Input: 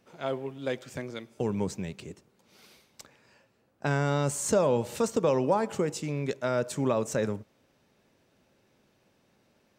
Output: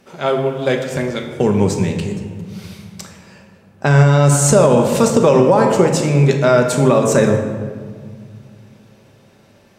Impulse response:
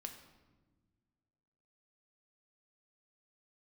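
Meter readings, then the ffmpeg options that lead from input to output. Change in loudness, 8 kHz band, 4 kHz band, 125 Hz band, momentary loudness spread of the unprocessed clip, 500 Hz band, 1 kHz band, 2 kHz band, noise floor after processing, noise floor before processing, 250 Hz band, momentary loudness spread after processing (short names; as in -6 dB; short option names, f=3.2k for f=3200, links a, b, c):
+15.0 dB, +15.0 dB, +14.5 dB, +18.5 dB, 13 LU, +14.5 dB, +14.0 dB, +14.5 dB, -50 dBFS, -69 dBFS, +15.5 dB, 17 LU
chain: -filter_complex "[1:a]atrim=start_sample=2205,asetrate=26901,aresample=44100[a];[0:a][a]afir=irnorm=-1:irlink=0,alimiter=level_in=17.5dB:limit=-1dB:release=50:level=0:latency=1,volume=-1dB"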